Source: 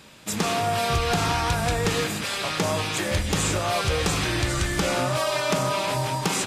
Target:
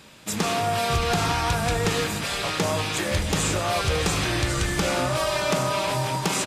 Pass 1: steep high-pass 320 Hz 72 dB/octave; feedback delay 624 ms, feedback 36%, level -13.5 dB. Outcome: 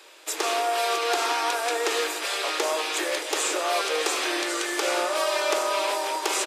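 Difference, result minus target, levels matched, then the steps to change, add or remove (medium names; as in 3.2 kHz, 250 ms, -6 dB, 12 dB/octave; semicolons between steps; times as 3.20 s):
250 Hz band -6.5 dB
remove: steep high-pass 320 Hz 72 dB/octave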